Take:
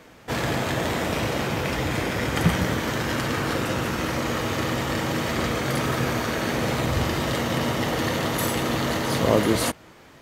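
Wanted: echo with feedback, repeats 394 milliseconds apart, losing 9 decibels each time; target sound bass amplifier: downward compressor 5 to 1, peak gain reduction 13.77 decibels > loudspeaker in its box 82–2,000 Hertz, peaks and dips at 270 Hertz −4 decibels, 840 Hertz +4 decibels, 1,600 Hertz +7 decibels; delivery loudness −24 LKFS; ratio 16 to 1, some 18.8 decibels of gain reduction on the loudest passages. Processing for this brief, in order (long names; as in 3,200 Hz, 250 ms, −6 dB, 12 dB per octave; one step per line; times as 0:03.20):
downward compressor 16 to 1, threshold −33 dBFS
repeating echo 394 ms, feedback 35%, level −9 dB
downward compressor 5 to 1, threshold −46 dBFS
loudspeaker in its box 82–2,000 Hz, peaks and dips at 270 Hz −4 dB, 840 Hz +4 dB, 1,600 Hz +7 dB
level +24 dB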